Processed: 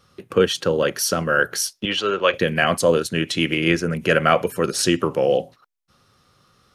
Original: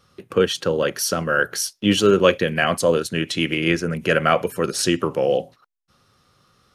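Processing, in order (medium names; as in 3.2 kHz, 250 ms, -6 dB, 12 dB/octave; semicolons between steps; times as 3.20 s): 1.85–2.34 s: three-band isolator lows -16 dB, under 540 Hz, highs -20 dB, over 4.7 kHz; trim +1 dB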